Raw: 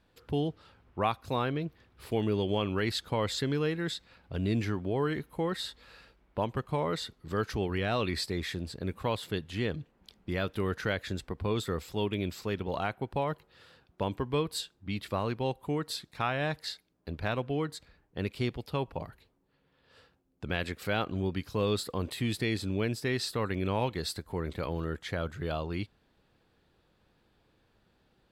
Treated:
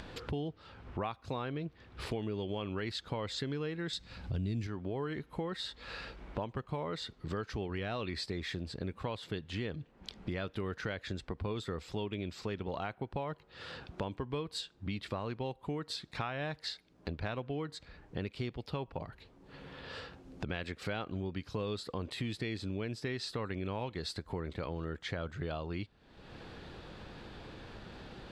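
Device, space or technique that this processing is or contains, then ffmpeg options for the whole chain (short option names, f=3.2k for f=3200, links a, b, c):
upward and downward compression: -filter_complex "[0:a]lowpass=6.1k,asettb=1/sr,asplit=3[a][b][c];[a]atrim=end=3.934[d];[b]atrim=start=3.93:end=4.67,asetpts=PTS-STARTPTS,afade=t=in:d=0.004:c=qsin,afade=t=out:st=0.736:d=0.004:c=qsin,bass=f=250:g=10,treble=f=4k:g=10[e];[c]atrim=start=4.666[f];[d][e]acrossfade=d=0.004:c1=hsin:c2=qsin[g];[g][f]acrossfade=d=0.004:c1=qsin:c2=hsin,acompressor=mode=upward:threshold=-45dB:ratio=2.5,acompressor=threshold=-46dB:ratio=4,volume=8.5dB"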